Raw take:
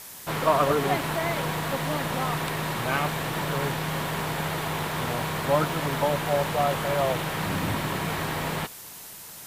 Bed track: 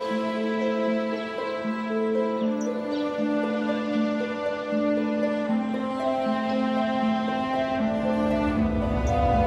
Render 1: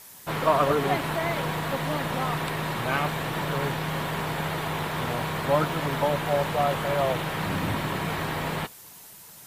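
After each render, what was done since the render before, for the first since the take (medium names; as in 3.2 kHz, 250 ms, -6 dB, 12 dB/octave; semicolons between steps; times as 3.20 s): noise reduction 6 dB, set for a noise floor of -43 dBFS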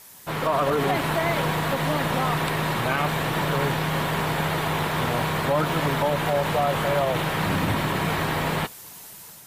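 level rider gain up to 4.5 dB; peak limiter -13.5 dBFS, peak gain reduction 7 dB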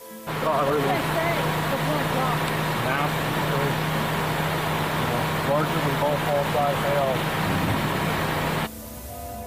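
add bed track -14 dB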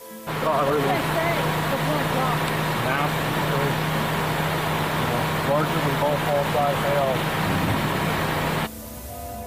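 trim +1 dB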